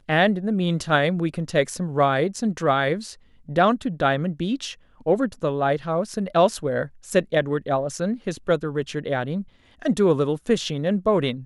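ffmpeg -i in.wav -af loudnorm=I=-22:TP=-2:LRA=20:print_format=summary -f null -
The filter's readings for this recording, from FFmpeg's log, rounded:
Input Integrated:    -23.3 LUFS
Input True Peak:      -6.1 dBTP
Input LRA:             1.2 LU
Input Threshold:     -33.5 LUFS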